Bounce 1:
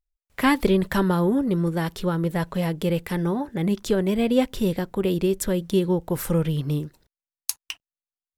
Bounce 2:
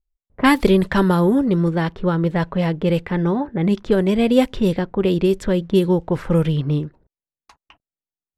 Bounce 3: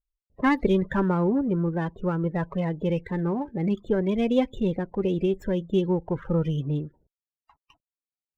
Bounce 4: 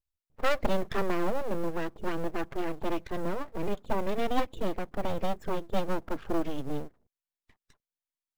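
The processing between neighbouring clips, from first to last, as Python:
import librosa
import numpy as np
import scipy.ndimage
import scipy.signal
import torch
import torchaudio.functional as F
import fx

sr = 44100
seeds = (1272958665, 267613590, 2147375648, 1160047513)

y1 = fx.env_lowpass(x, sr, base_hz=450.0, full_db=-16.0)
y1 = y1 * 10.0 ** (5.0 / 20.0)
y2 = fx.spec_topn(y1, sr, count=32)
y2 = fx.running_max(y2, sr, window=3)
y2 = y2 * 10.0 ** (-7.0 / 20.0)
y3 = np.abs(y2)
y3 = fx.quant_float(y3, sr, bits=4)
y3 = y3 * 10.0 ** (-2.5 / 20.0)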